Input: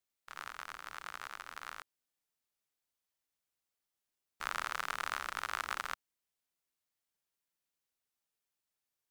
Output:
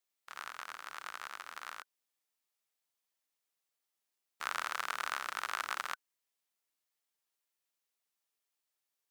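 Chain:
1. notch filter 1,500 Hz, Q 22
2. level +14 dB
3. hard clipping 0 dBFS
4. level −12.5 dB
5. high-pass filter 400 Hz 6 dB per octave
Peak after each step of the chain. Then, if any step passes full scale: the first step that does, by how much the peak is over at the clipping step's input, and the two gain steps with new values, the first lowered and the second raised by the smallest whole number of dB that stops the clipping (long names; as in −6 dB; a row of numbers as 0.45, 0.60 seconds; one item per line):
−16.0, −2.0, −2.0, −14.5, −15.0 dBFS
no step passes full scale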